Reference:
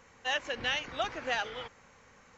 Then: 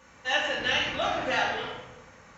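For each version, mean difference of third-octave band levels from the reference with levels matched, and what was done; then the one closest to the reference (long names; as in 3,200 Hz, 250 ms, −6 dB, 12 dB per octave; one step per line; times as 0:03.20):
4.0 dB: high-pass filter 47 Hz
rectangular room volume 510 cubic metres, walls mixed, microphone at 2.5 metres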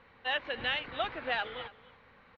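3.0 dB: elliptic low-pass filter 4,000 Hz, stop band 60 dB
on a send: single-tap delay 280 ms −19 dB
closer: second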